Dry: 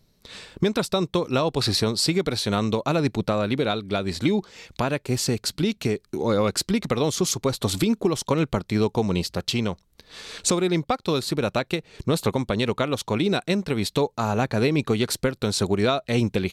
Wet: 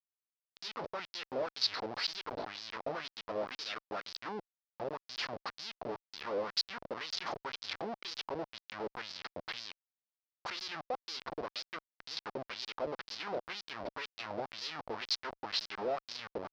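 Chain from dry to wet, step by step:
comparator with hysteresis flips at −23.5 dBFS
auto-filter band-pass sine 2 Hz 550–4,900 Hz
high shelf with overshoot 6,600 Hz −10 dB, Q 3
level −4 dB

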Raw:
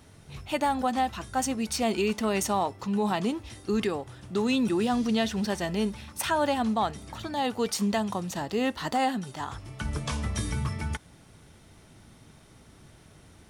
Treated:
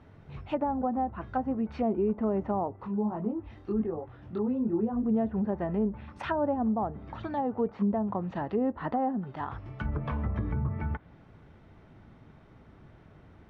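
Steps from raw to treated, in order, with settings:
low-pass filter 1,800 Hz 12 dB per octave
treble cut that deepens with the level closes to 700 Hz, closed at −24.5 dBFS
0:02.76–0:05.04: multi-voice chorus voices 6, 1.5 Hz, delay 21 ms, depth 3 ms

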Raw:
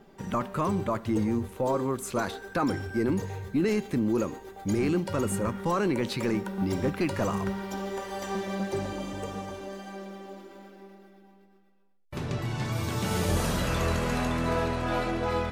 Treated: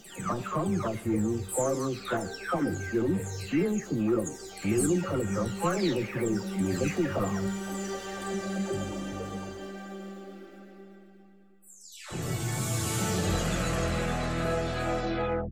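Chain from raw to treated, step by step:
every frequency bin delayed by itself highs early, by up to 502 ms
in parallel at −10 dB: soft clipping −30 dBFS, distortion −9 dB
on the sum: parametric band 7,400 Hz +9.5 dB 0.33 octaves
notch filter 980 Hz, Q 6.3
tuned comb filter 360 Hz, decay 0.3 s, harmonics all, mix 30%
level +2 dB

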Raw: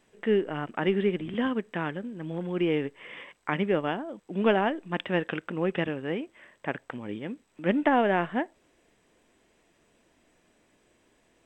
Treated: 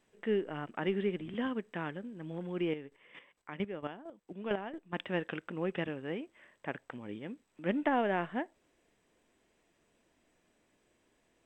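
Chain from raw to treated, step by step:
0:02.69–0:04.93: square-wave tremolo 4.4 Hz, depth 65%, duty 20%
level −7 dB

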